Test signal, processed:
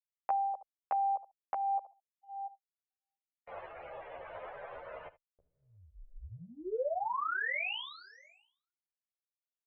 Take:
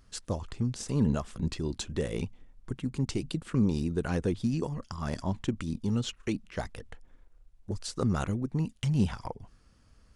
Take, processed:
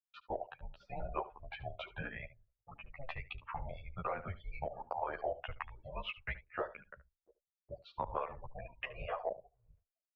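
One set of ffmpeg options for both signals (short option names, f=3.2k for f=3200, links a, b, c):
-filter_complex "[0:a]asplit=2[a][b];[b]adelay=687,lowpass=f=1.5k:p=1,volume=-19dB,asplit=2[c][d];[d]adelay=687,lowpass=f=1.5k:p=1,volume=0.32,asplit=2[e][f];[f]adelay=687,lowpass=f=1.5k:p=1,volume=0.32[g];[c][e][g]amix=inputs=3:normalize=0[h];[a][h]amix=inputs=2:normalize=0,afftdn=nr=34:nf=-45,agate=range=-41dB:threshold=-47dB:ratio=16:detection=peak,highpass=f=260:t=q:w=0.5412,highpass=f=260:t=q:w=1.307,lowpass=f=2.9k:t=q:w=0.5176,lowpass=f=2.9k:t=q:w=0.7071,lowpass=f=2.9k:t=q:w=1.932,afreqshift=-270,acontrast=70,lowshelf=f=380:t=q:w=3:g=-13.5,asplit=2[i][j];[j]aecho=0:1:73:0.133[k];[i][k]amix=inputs=2:normalize=0,acompressor=threshold=-29dB:ratio=12,asplit=2[l][m];[m]adelay=11.7,afreqshift=-1.3[n];[l][n]amix=inputs=2:normalize=1"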